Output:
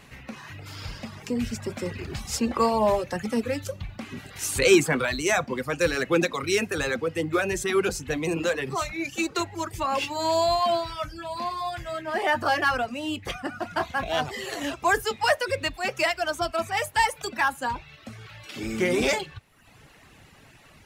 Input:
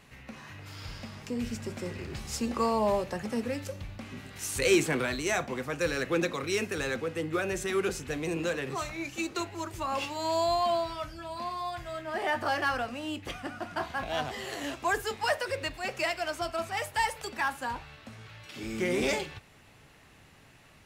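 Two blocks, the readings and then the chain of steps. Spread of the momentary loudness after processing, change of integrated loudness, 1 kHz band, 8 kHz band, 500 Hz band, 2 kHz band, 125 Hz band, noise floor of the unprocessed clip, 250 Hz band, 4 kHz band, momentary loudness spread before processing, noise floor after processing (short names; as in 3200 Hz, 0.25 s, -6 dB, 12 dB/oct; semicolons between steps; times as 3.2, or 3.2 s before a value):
14 LU, +5.5 dB, +5.5 dB, +5.5 dB, +5.5 dB, +6.0 dB, +4.5 dB, -57 dBFS, +5.0 dB, +5.5 dB, 14 LU, -53 dBFS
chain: reverb removal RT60 0.84 s; gain +6.5 dB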